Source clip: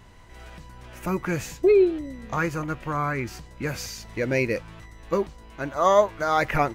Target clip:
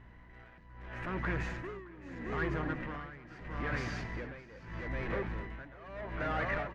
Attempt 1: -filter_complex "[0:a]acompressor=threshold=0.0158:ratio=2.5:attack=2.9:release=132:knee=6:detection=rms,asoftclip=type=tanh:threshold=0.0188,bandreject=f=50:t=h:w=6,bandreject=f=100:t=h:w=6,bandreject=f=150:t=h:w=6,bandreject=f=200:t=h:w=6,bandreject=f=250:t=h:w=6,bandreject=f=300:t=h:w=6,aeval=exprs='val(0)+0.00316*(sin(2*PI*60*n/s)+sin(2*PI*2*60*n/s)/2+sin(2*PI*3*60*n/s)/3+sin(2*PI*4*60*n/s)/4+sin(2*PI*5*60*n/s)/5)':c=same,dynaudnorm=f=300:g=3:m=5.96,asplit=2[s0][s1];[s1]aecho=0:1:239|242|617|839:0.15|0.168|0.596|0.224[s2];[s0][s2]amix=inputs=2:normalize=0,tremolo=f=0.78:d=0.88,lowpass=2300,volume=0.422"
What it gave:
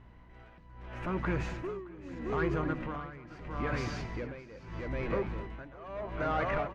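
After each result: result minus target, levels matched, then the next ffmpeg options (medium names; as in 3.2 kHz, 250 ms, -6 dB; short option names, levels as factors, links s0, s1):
2 kHz band -4.5 dB; saturation: distortion -5 dB
-filter_complex "[0:a]acompressor=threshold=0.0158:ratio=2.5:attack=2.9:release=132:knee=6:detection=rms,asoftclip=type=tanh:threshold=0.0188,bandreject=f=50:t=h:w=6,bandreject=f=100:t=h:w=6,bandreject=f=150:t=h:w=6,bandreject=f=200:t=h:w=6,bandreject=f=250:t=h:w=6,bandreject=f=300:t=h:w=6,aeval=exprs='val(0)+0.00316*(sin(2*PI*60*n/s)+sin(2*PI*2*60*n/s)/2+sin(2*PI*3*60*n/s)/3+sin(2*PI*4*60*n/s)/4+sin(2*PI*5*60*n/s)/5)':c=same,dynaudnorm=f=300:g=3:m=5.96,asplit=2[s0][s1];[s1]aecho=0:1:239|242|617|839:0.15|0.168|0.596|0.224[s2];[s0][s2]amix=inputs=2:normalize=0,tremolo=f=0.78:d=0.88,lowpass=2300,equalizer=f=1800:w=3.1:g=8.5,volume=0.422"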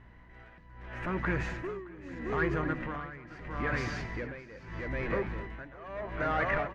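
saturation: distortion -5 dB
-filter_complex "[0:a]acompressor=threshold=0.0158:ratio=2.5:attack=2.9:release=132:knee=6:detection=rms,asoftclip=type=tanh:threshold=0.00841,bandreject=f=50:t=h:w=6,bandreject=f=100:t=h:w=6,bandreject=f=150:t=h:w=6,bandreject=f=200:t=h:w=6,bandreject=f=250:t=h:w=6,bandreject=f=300:t=h:w=6,aeval=exprs='val(0)+0.00316*(sin(2*PI*60*n/s)+sin(2*PI*2*60*n/s)/2+sin(2*PI*3*60*n/s)/3+sin(2*PI*4*60*n/s)/4+sin(2*PI*5*60*n/s)/5)':c=same,dynaudnorm=f=300:g=3:m=5.96,asplit=2[s0][s1];[s1]aecho=0:1:239|242|617|839:0.15|0.168|0.596|0.224[s2];[s0][s2]amix=inputs=2:normalize=0,tremolo=f=0.78:d=0.88,lowpass=2300,equalizer=f=1800:w=3.1:g=8.5,volume=0.422"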